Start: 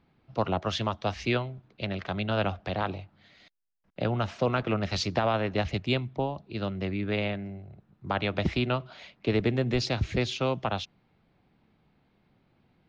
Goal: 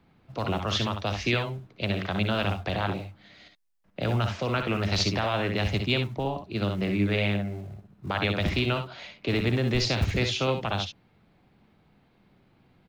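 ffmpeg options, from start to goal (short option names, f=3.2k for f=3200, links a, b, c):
-filter_complex "[0:a]acrossover=split=100|1600[a][b][c];[a]acrusher=bits=3:mode=log:mix=0:aa=0.000001[d];[b]alimiter=level_in=1dB:limit=-24dB:level=0:latency=1,volume=-1dB[e];[d][e][c]amix=inputs=3:normalize=0,aecho=1:1:59|69:0.376|0.335,volume=4dB"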